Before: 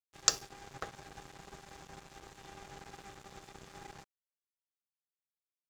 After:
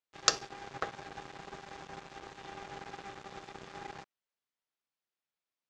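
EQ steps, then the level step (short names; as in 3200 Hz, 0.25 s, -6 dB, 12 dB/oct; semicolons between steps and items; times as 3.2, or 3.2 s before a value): air absorption 120 m; low shelf 130 Hz -11.5 dB; +7.0 dB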